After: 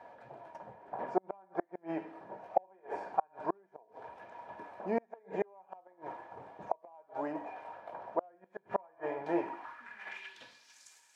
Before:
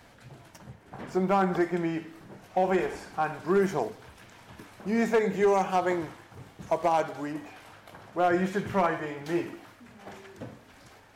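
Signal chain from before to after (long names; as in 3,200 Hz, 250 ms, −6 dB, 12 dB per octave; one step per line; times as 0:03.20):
hollow resonant body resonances 950/1,700/2,400 Hz, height 13 dB, ringing for 80 ms
gate with flip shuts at −17 dBFS, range −37 dB
band-pass filter sweep 660 Hz → 7,400 Hz, 0:09.36–0:10.85
level +7 dB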